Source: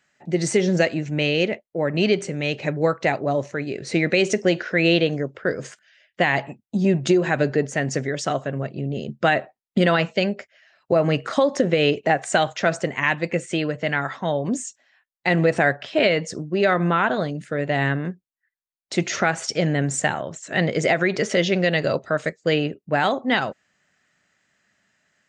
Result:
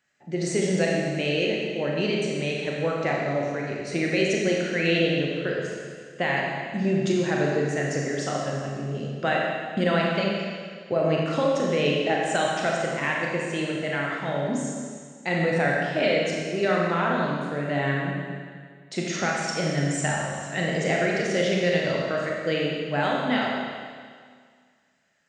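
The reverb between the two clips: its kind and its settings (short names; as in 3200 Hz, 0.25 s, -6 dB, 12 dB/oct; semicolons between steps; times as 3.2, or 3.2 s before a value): Schroeder reverb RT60 1.9 s, combs from 28 ms, DRR -2.5 dB; gain -7.5 dB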